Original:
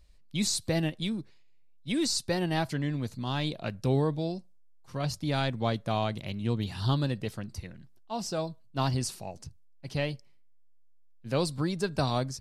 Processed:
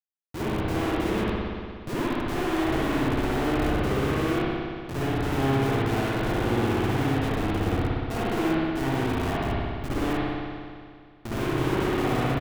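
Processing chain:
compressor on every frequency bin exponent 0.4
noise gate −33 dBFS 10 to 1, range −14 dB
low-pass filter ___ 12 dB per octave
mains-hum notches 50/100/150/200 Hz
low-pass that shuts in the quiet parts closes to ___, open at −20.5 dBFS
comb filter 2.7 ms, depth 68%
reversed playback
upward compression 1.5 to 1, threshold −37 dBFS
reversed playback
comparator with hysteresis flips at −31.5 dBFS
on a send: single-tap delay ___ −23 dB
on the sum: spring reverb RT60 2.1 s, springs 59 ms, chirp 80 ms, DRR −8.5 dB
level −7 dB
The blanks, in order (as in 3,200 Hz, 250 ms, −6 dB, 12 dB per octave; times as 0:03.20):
1,100 Hz, 760 Hz, 180 ms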